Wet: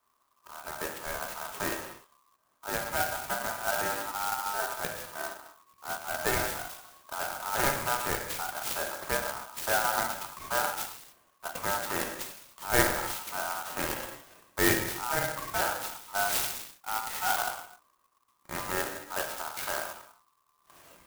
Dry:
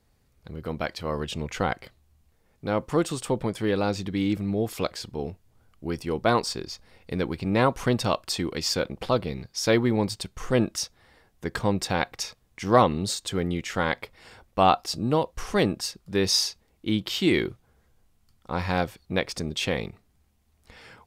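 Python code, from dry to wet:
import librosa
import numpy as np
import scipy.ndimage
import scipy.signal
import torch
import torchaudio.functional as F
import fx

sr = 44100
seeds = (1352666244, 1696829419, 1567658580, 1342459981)

y = fx.rev_gated(x, sr, seeds[0], gate_ms=330, shape='falling', drr_db=0.5)
y = y * np.sin(2.0 * np.pi * 1100.0 * np.arange(len(y)) / sr)
y = fx.clock_jitter(y, sr, seeds[1], jitter_ms=0.075)
y = y * librosa.db_to_amplitude(-5.5)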